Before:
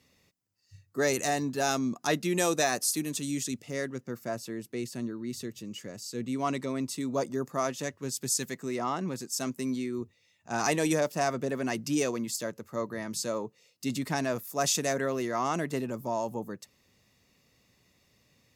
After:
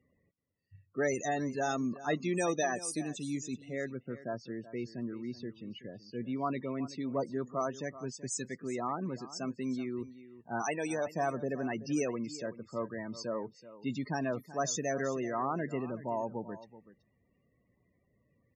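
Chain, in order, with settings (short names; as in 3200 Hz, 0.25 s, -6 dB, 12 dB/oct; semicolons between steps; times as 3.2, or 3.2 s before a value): low-pass opened by the level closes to 1900 Hz, open at -25 dBFS; loudest bins only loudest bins 32; 10.62–11.07 low shelf 340 Hz -10 dB; on a send: echo 0.379 s -16 dB; on the sum: gain -3.5 dB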